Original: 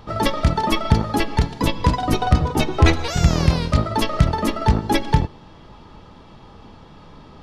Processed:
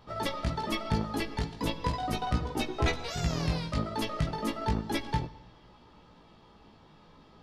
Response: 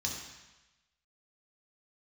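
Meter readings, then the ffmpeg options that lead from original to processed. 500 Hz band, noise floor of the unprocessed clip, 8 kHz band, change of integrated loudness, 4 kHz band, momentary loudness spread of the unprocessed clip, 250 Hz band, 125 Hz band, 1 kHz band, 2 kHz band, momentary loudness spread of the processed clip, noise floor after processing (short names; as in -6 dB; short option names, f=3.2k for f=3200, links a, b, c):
-11.0 dB, -45 dBFS, -11.0 dB, -12.5 dB, -10.0 dB, 5 LU, -11.5 dB, -14.0 dB, -11.5 dB, -10.5 dB, 4 LU, -57 dBFS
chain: -filter_complex "[0:a]lowshelf=f=120:g=-7.5,flanger=delay=16.5:depth=2.1:speed=0.36,asplit=2[a][b];[1:a]atrim=start_sample=2205,asetrate=35721,aresample=44100[c];[b][c]afir=irnorm=-1:irlink=0,volume=-21dB[d];[a][d]amix=inputs=2:normalize=0,volume=-8dB"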